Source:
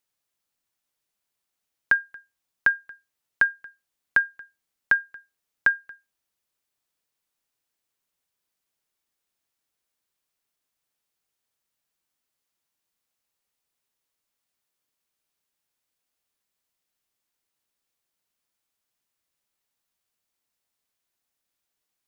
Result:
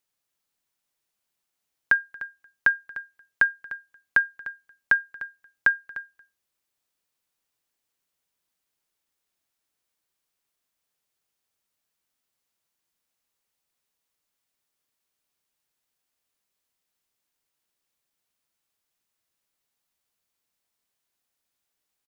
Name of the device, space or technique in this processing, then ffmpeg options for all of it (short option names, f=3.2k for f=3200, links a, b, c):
ducked delay: -filter_complex "[0:a]asplit=3[a][b][c];[b]adelay=300,volume=-6.5dB[d];[c]apad=whole_len=986555[e];[d][e]sidechaincompress=threshold=-28dB:ratio=4:attack=16:release=1240[f];[a][f]amix=inputs=2:normalize=0"